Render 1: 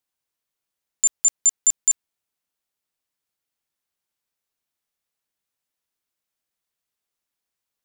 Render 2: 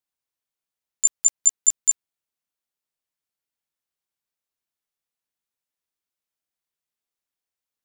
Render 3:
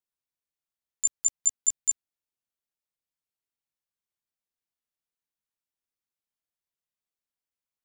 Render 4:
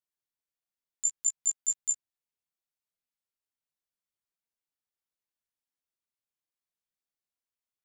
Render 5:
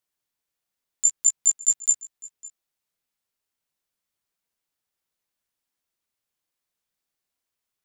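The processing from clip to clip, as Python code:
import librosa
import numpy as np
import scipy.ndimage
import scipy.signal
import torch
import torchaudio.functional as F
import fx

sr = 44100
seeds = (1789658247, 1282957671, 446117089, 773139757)

y1 = fx.level_steps(x, sr, step_db=14)
y1 = y1 * 10.0 ** (8.0 / 20.0)
y2 = fx.low_shelf(y1, sr, hz=210.0, db=5.0)
y2 = y2 * 10.0 ** (-6.5 / 20.0)
y3 = fx.detune_double(y2, sr, cents=25)
y4 = y3 + 10.0 ** (-21.0 / 20.0) * np.pad(y3, (int(555 * sr / 1000.0), 0))[:len(y3)]
y4 = y4 * 10.0 ** (8.5 / 20.0)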